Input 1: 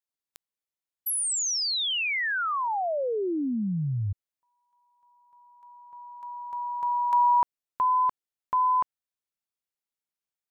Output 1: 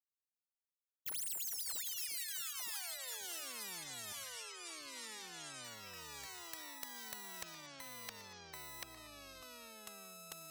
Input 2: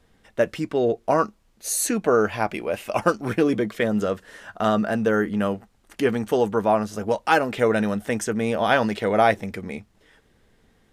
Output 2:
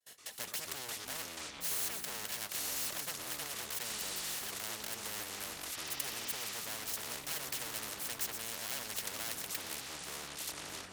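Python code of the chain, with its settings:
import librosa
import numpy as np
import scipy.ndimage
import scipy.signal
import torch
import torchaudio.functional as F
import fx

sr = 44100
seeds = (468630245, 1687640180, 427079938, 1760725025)

p1 = fx.lower_of_two(x, sr, delay_ms=1.7)
p2 = fx.gate_hold(p1, sr, open_db=-50.0, close_db=-57.0, hold_ms=53.0, range_db=-33, attack_ms=8.9, release_ms=72.0)
p3 = fx.low_shelf(p2, sr, hz=400.0, db=7.5)
p4 = fx.over_compress(p3, sr, threshold_db=-32.0, ratio=-1.0)
p5 = p3 + (p4 * 10.0 ** (-3.0 / 20.0))
p6 = np.diff(p5, prepend=0.0)
p7 = fx.vibrato(p6, sr, rate_hz=0.32, depth_cents=21.0)
p8 = fx.notch_comb(p7, sr, f0_hz=1200.0)
p9 = fx.echo_feedback(p8, sr, ms=119, feedback_pct=37, wet_db=-23.0)
p10 = fx.echo_pitch(p9, sr, ms=82, semitones=-7, count=3, db_per_echo=-6.0)
p11 = fx.spectral_comp(p10, sr, ratio=4.0)
y = p11 * 10.0 ** (-2.0 / 20.0)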